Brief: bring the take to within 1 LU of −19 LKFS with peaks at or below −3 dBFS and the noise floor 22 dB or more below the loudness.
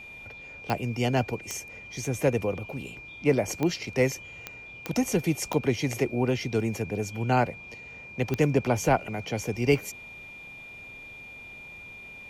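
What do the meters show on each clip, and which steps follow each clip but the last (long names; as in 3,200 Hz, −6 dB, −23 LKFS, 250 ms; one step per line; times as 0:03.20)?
number of clicks 7; interfering tone 2,400 Hz; level of the tone −42 dBFS; integrated loudness −28.0 LKFS; sample peak −9.5 dBFS; target loudness −19.0 LKFS
→ click removal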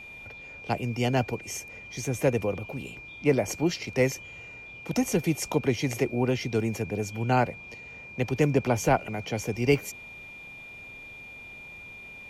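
number of clicks 0; interfering tone 2,400 Hz; level of the tone −42 dBFS
→ notch filter 2,400 Hz, Q 30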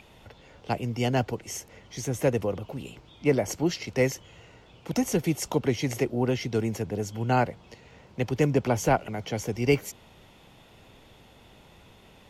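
interfering tone none found; integrated loudness −28.0 LKFS; sample peak −9.5 dBFS; target loudness −19.0 LKFS
→ level +9 dB
brickwall limiter −3 dBFS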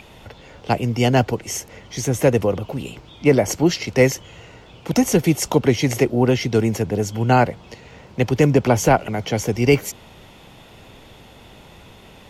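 integrated loudness −19.5 LKFS; sample peak −3.0 dBFS; background noise floor −46 dBFS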